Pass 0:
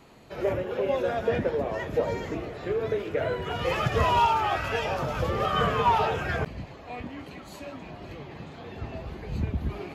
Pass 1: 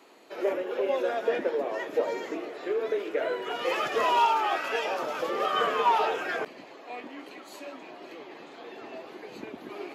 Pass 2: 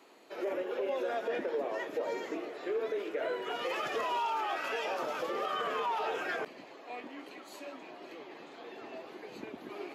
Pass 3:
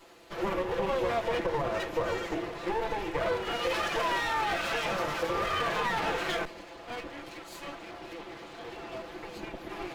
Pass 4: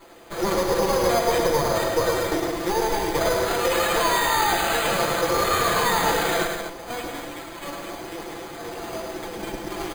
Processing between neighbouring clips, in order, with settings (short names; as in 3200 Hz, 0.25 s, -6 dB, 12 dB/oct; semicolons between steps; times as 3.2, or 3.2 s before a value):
Chebyshev high-pass 310 Hz, order 3
limiter -22 dBFS, peak gain reduction 9.5 dB; gain -3.5 dB
minimum comb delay 5.9 ms; gain +6 dB
careless resampling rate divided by 8×, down filtered, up hold; loudspeakers at several distances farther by 36 m -5 dB, 57 m -11 dB, 84 m -8 dB; gain +7 dB